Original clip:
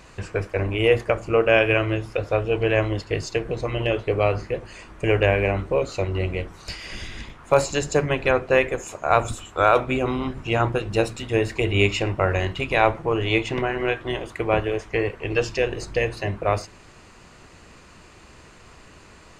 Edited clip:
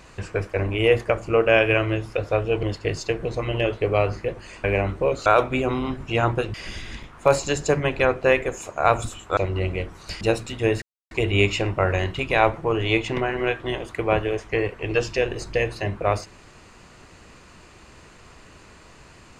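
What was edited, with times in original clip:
2.63–2.89 s: delete
4.90–5.34 s: delete
5.96–6.80 s: swap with 9.63–10.91 s
11.52 s: insert silence 0.29 s

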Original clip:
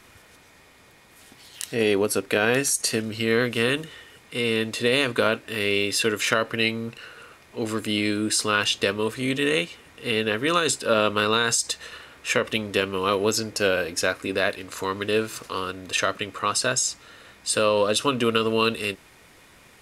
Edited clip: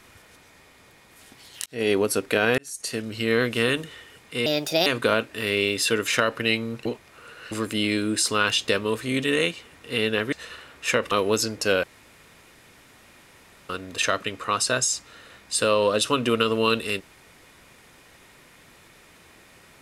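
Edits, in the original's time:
1.66–1.91 s: fade in
2.58–3.51 s: fade in equal-power
4.46–5.00 s: speed 134%
6.99–7.65 s: reverse
10.46–11.74 s: delete
12.53–13.06 s: delete
13.78–15.64 s: room tone

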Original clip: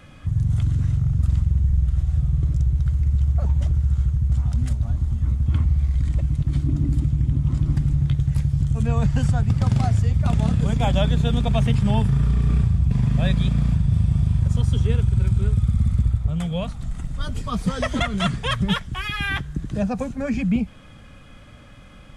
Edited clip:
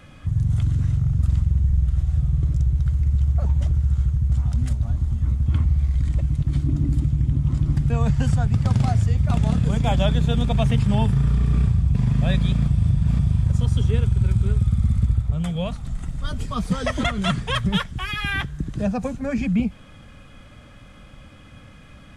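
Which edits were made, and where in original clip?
7.90–8.86 s: delete
13.64–14.15 s: reverse

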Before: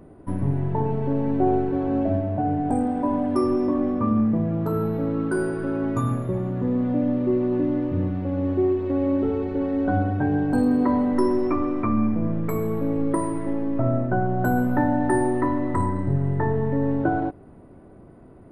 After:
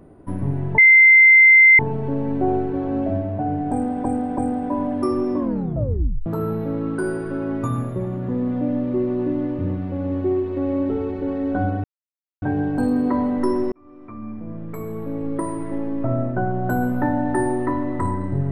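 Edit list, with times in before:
0.78 s: add tone 2.08 kHz -7 dBFS 1.01 s
2.71–3.04 s: loop, 3 plays
3.71 s: tape stop 0.88 s
10.17 s: insert silence 0.58 s
11.47–13.56 s: fade in

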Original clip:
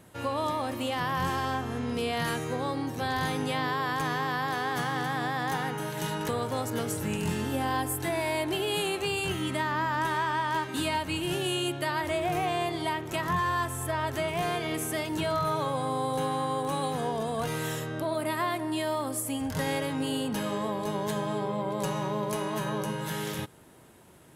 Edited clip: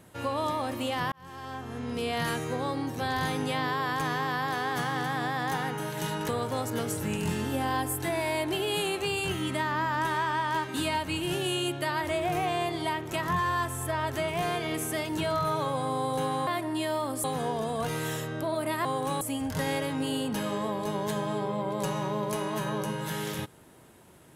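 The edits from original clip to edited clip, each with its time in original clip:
1.12–2.16 s: fade in
16.47–16.83 s: swap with 18.44–19.21 s

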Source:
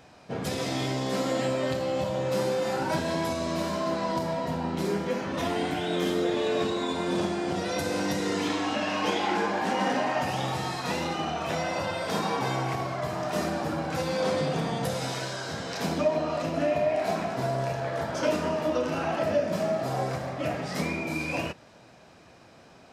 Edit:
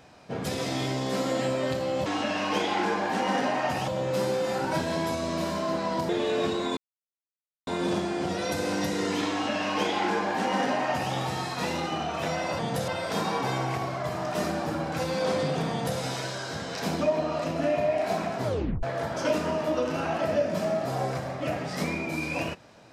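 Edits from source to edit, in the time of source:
4.27–6.26 s: delete
6.94 s: insert silence 0.90 s
8.58–10.40 s: copy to 2.06 s
14.68–14.97 s: copy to 11.86 s
17.41 s: tape stop 0.40 s

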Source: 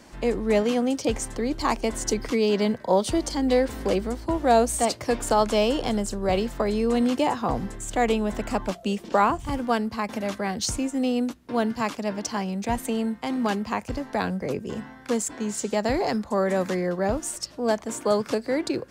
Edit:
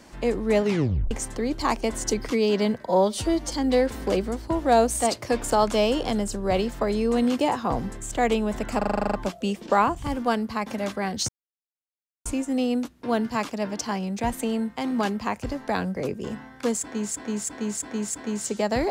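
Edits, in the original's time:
0.62 s: tape stop 0.49 s
2.86–3.29 s: stretch 1.5×
8.56 s: stutter 0.04 s, 10 plays
10.71 s: insert silence 0.97 s
15.24–15.57 s: loop, 5 plays

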